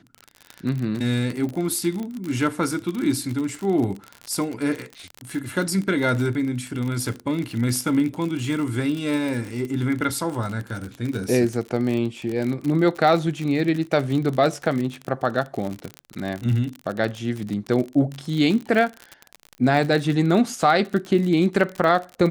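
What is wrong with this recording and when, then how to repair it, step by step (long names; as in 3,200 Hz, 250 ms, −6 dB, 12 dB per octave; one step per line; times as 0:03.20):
surface crackle 48 per second −26 dBFS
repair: click removal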